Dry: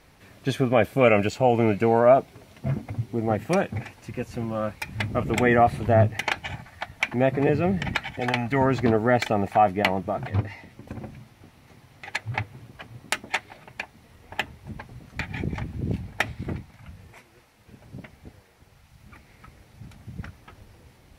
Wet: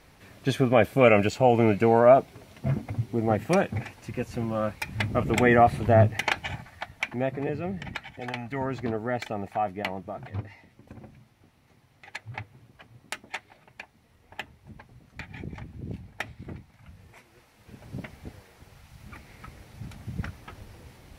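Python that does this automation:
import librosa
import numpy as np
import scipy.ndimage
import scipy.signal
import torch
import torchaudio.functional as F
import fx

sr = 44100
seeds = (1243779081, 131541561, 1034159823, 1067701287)

y = fx.gain(x, sr, db=fx.line((6.5, 0.0), (7.5, -9.0), (16.48, -9.0), (17.98, 3.5)))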